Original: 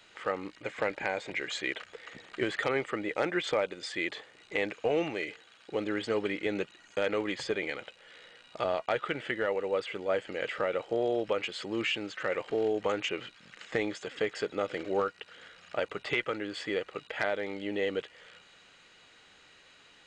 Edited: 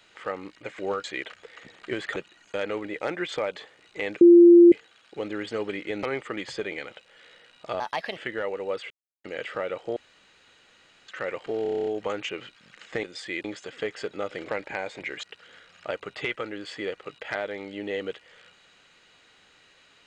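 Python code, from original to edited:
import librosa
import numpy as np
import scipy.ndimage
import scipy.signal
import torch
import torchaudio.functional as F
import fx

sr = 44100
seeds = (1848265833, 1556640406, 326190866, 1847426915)

y = fx.edit(x, sr, fx.swap(start_s=0.79, length_s=0.75, other_s=14.87, other_length_s=0.25),
    fx.swap(start_s=2.66, length_s=0.34, other_s=6.59, other_length_s=0.69),
    fx.move(start_s=3.71, length_s=0.41, to_s=13.83),
    fx.bleep(start_s=4.77, length_s=0.51, hz=345.0, db=-8.5),
    fx.speed_span(start_s=8.71, length_s=0.49, speed=1.35),
    fx.silence(start_s=9.94, length_s=0.34),
    fx.room_tone_fill(start_s=11.0, length_s=1.12),
    fx.stutter(start_s=12.66, slice_s=0.03, count=9), tone=tone)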